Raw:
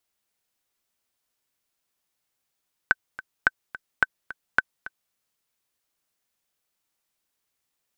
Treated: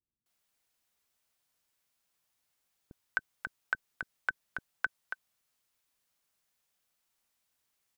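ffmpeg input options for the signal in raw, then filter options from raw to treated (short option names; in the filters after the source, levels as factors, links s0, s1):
-f lavfi -i "aevalsrc='pow(10,(-4-17.5*gte(mod(t,2*60/215),60/215))/20)*sin(2*PI*1530*mod(t,60/215))*exp(-6.91*mod(t,60/215)/0.03)':d=2.23:s=44100"
-filter_complex "[0:a]alimiter=limit=0.178:level=0:latency=1:release=55,acrossover=split=350[s0][s1];[s1]adelay=260[s2];[s0][s2]amix=inputs=2:normalize=0"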